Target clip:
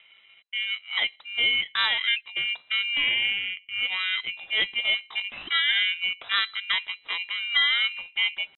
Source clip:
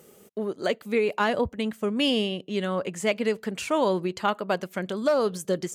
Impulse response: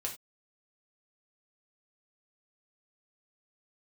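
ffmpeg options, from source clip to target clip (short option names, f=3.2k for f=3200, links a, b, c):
-af "aeval=exprs='val(0)*sin(2*PI*1400*n/s)':c=same,lowpass=f=3.4k:t=q:w=0.5098,lowpass=f=3.4k:t=q:w=0.6013,lowpass=f=3.4k:t=q:w=0.9,lowpass=f=3.4k:t=q:w=2.563,afreqshift=-4000,atempo=0.67,volume=2.5dB"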